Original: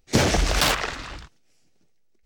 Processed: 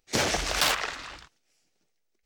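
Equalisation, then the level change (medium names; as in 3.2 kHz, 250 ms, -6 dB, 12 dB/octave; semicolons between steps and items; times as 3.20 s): bass shelf 340 Hz -12 dB; -2.5 dB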